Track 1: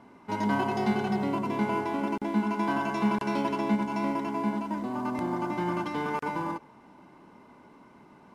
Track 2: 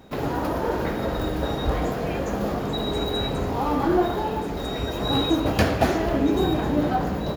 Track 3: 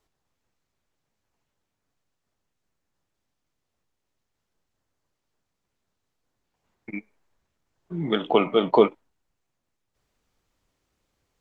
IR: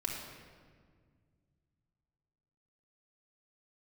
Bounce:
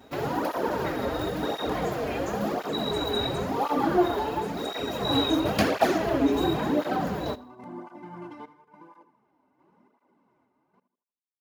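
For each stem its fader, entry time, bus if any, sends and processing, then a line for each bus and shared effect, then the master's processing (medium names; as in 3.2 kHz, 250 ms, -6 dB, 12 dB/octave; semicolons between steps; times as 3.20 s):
-4.5 dB, 2.45 s, no send, echo send -14 dB, treble shelf 2 kHz -10.5 dB; random-step tremolo, depth 95%
+2.0 dB, 0.00 s, no send, echo send -21 dB, none
mute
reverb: none
echo: feedback delay 80 ms, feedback 40%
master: bass shelf 130 Hz -11.5 dB; cancelling through-zero flanger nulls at 0.95 Hz, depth 6.3 ms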